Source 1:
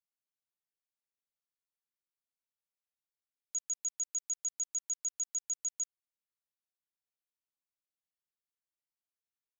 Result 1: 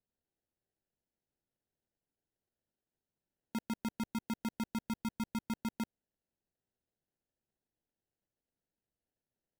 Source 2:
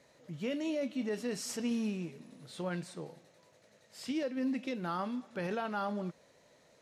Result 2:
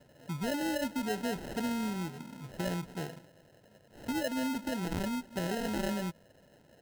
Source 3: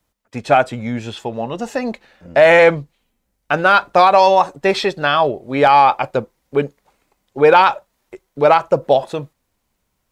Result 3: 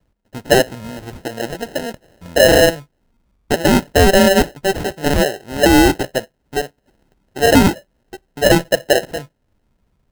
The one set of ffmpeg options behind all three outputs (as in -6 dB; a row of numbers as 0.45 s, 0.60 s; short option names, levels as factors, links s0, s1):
-filter_complex "[0:a]lowshelf=f=410:g=11.5,acrossover=split=510|2100[s0][s1][s2];[s0]acompressor=threshold=0.0251:ratio=6[s3];[s3][s1][s2]amix=inputs=3:normalize=0,acrusher=samples=38:mix=1:aa=0.000001,volume=0.891"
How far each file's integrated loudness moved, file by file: -5.0 LU, +1.5 LU, -0.5 LU